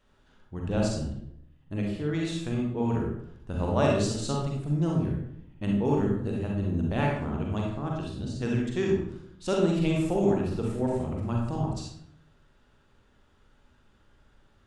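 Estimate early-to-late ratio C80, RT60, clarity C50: 5.0 dB, 0.70 s, 0.5 dB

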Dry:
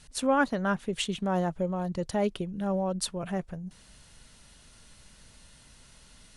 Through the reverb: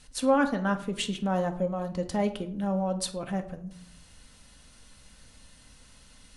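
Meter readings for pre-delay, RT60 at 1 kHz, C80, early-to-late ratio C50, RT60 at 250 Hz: 4 ms, 0.60 s, 16.5 dB, 13.0 dB, 0.90 s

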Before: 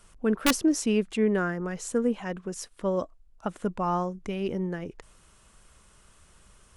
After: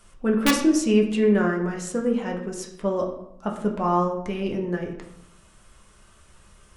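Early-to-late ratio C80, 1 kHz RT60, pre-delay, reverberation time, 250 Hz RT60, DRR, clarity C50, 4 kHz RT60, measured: 9.5 dB, 0.75 s, 4 ms, 0.75 s, 0.95 s, 0.0 dB, 7.5 dB, 0.50 s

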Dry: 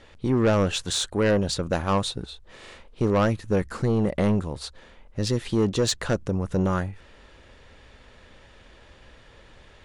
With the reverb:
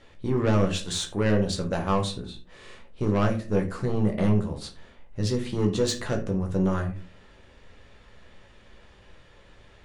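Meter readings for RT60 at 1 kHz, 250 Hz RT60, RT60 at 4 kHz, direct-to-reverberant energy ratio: 0.35 s, 0.65 s, 0.20 s, 2.0 dB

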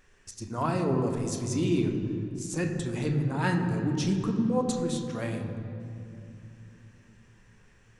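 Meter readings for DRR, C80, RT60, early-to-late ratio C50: 3.0 dB, 6.5 dB, 2.7 s, 5.5 dB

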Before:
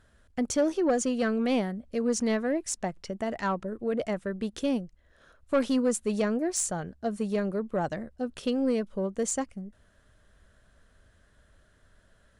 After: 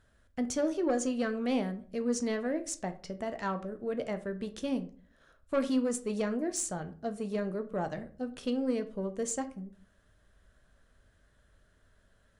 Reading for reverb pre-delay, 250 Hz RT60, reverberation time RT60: 10 ms, 0.60 s, 0.45 s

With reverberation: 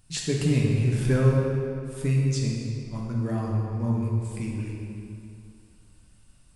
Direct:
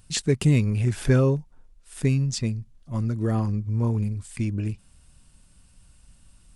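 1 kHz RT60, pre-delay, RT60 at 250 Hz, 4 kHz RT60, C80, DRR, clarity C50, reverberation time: 2.7 s, 7 ms, 2.4 s, 1.8 s, 1.5 dB, -3.0 dB, -0.5 dB, 2.6 s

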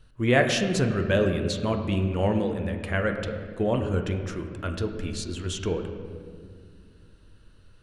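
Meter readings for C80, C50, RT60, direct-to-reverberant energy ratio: 8.0 dB, 7.0 dB, 2.1 s, 4.0 dB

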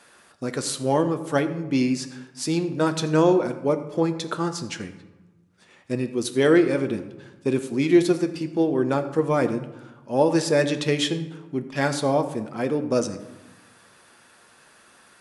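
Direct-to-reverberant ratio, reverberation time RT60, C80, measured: 7.0 dB, 1.2 s, 13.0 dB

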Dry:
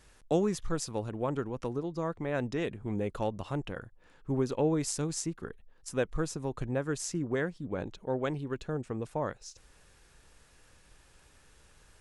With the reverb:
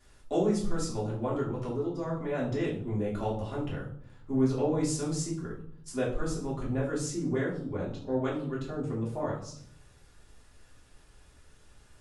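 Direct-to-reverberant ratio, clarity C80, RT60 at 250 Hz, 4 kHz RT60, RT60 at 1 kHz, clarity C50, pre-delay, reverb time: -6.5 dB, 10.0 dB, 0.90 s, 0.45 s, 0.55 s, 6.0 dB, 3 ms, 0.60 s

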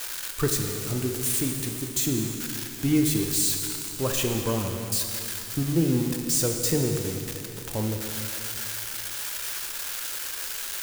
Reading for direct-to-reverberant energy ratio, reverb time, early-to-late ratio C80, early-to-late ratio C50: 2.5 dB, 2.8 s, 4.5 dB, 3.5 dB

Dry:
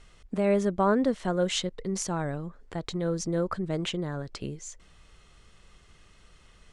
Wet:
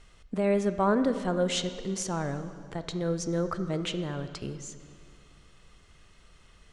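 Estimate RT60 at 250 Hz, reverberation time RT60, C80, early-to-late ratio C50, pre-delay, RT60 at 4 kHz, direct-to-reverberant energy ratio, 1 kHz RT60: 2.4 s, 2.2 s, 12.0 dB, 11.0 dB, 21 ms, 1.8 s, 10.0 dB, 2.1 s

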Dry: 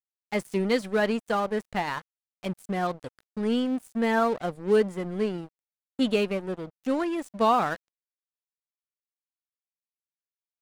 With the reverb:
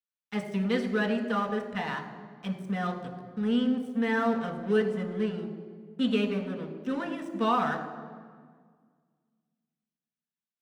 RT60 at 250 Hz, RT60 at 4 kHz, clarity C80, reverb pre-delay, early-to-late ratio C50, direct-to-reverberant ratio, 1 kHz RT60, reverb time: 2.3 s, 1.2 s, 10.0 dB, 3 ms, 8.5 dB, 3.5 dB, 1.7 s, 1.8 s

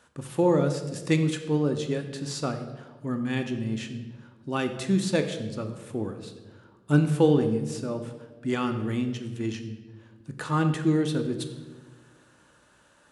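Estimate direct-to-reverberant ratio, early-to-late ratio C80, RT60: 6.0 dB, 10.5 dB, 1.4 s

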